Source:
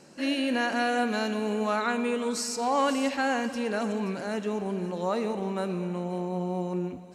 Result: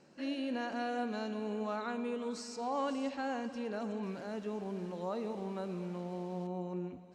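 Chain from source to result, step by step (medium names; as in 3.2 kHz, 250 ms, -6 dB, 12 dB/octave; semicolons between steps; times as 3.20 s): dynamic bell 2 kHz, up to -6 dB, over -42 dBFS, Q 1.1; 4.03–6.47 s: word length cut 8-bit, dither none; distance through air 88 m; trim -8.5 dB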